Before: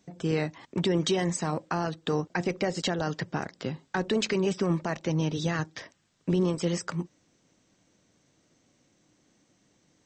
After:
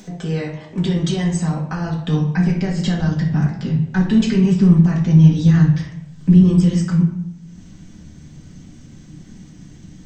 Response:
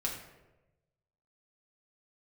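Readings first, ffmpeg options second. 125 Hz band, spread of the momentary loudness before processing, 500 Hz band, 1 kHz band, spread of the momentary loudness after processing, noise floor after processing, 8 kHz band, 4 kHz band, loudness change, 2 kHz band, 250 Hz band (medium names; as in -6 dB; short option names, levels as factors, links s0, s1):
+17.5 dB, 9 LU, +1.5 dB, +1.0 dB, 12 LU, -42 dBFS, no reading, +2.5 dB, +13.0 dB, +3.5 dB, +15.0 dB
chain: -filter_complex "[0:a]asubboost=boost=9.5:cutoff=170,asplit=2[s0][s1];[s1]acompressor=mode=upward:threshold=0.0631:ratio=2.5,volume=1.41[s2];[s0][s2]amix=inputs=2:normalize=0,flanger=delay=4.7:depth=10:regen=75:speed=0.43:shape=triangular[s3];[1:a]atrim=start_sample=2205,asetrate=57330,aresample=44100[s4];[s3][s4]afir=irnorm=-1:irlink=0,volume=0.841"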